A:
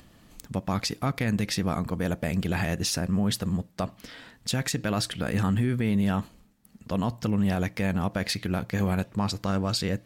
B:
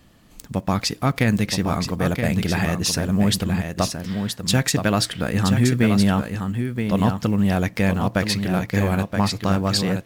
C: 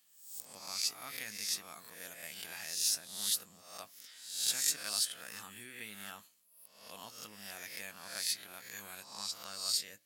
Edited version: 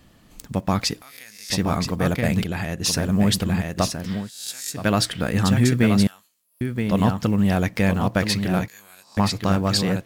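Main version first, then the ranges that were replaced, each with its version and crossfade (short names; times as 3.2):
B
1.02–1.5 from C
2.44–2.84 from A
4.23–4.8 from C, crossfade 0.16 s
6.07–6.61 from C
8.68–9.17 from C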